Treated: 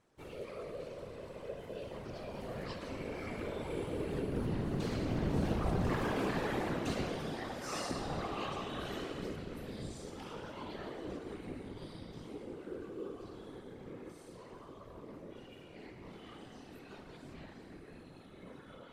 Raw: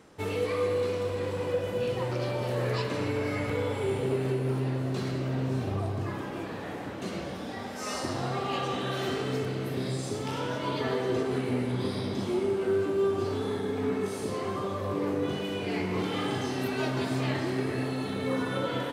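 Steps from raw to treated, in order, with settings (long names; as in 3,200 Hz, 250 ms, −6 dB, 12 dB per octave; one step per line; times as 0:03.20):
source passing by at 0:06.22, 10 m/s, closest 5.9 metres
gain into a clipping stage and back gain 32.5 dB
random phases in short frames
level +3.5 dB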